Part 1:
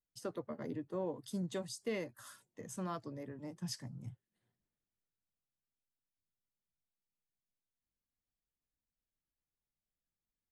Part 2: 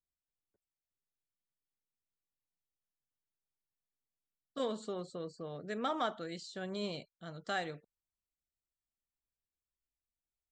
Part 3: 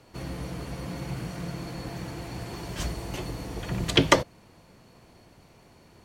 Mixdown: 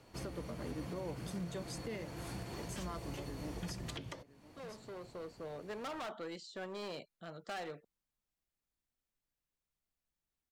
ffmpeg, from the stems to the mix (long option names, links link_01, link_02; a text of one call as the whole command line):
ffmpeg -i stem1.wav -i stem2.wav -i stem3.wav -filter_complex "[0:a]volume=-0.5dB,asplit=3[link_01][link_02][link_03];[link_02]volume=-16dB[link_04];[1:a]highshelf=frequency=3600:gain=-8.5,asoftclip=type=hard:threshold=-39dB,acrossover=split=300|3000[link_05][link_06][link_07];[link_05]acompressor=threshold=-57dB:ratio=6[link_08];[link_08][link_06][link_07]amix=inputs=3:normalize=0,volume=2dB[link_09];[2:a]acompressor=threshold=-35dB:ratio=2.5,volume=-5.5dB[link_10];[link_03]apad=whole_len=463501[link_11];[link_09][link_11]sidechaincompress=threshold=-55dB:ratio=8:attack=45:release=1460[link_12];[link_04]aecho=0:1:1009:1[link_13];[link_01][link_12][link_10][link_13]amix=inputs=4:normalize=0,alimiter=level_in=8.5dB:limit=-24dB:level=0:latency=1:release=202,volume=-8.5dB" out.wav